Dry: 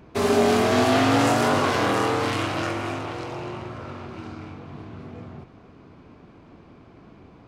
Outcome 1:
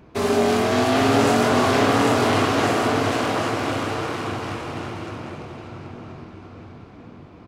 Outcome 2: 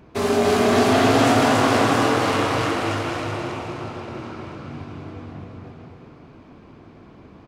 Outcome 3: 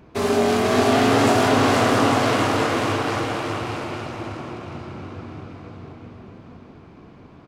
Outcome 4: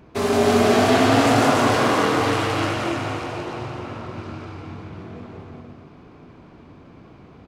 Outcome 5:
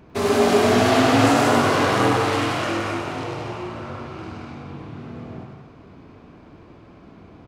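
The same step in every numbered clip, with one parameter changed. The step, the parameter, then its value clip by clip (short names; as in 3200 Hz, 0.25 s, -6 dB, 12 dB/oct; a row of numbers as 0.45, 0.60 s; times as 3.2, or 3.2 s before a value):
bouncing-ball echo, first gap: 0.8, 0.28, 0.49, 0.17, 0.1 s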